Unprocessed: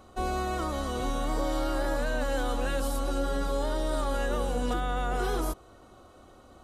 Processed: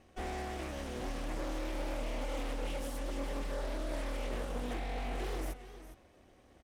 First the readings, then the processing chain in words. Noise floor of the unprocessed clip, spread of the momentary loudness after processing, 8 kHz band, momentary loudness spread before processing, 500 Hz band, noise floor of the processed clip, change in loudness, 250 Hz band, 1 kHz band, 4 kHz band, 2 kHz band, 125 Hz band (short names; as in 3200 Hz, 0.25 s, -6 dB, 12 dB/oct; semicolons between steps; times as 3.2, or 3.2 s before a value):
-54 dBFS, 3 LU, -8.5 dB, 2 LU, -9.5 dB, -63 dBFS, -9.0 dB, -8.5 dB, -11.5 dB, -7.5 dB, -8.5 dB, -7.5 dB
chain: minimum comb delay 0.34 ms; echo 0.409 s -13 dB; Doppler distortion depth 0.52 ms; gain -8 dB